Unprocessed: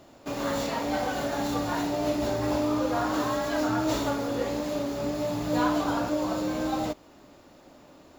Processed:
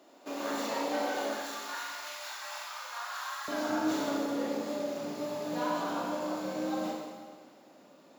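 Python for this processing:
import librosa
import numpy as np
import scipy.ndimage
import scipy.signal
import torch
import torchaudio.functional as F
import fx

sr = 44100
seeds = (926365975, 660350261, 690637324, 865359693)

y = fx.highpass(x, sr, hz=fx.steps((0.0, 250.0), (1.33, 1100.0), (3.48, 170.0)), slope=24)
y = fx.rider(y, sr, range_db=3, speed_s=2.0)
y = fx.rev_schroeder(y, sr, rt60_s=1.6, comb_ms=32, drr_db=-0.5)
y = y * librosa.db_to_amplitude(-7.5)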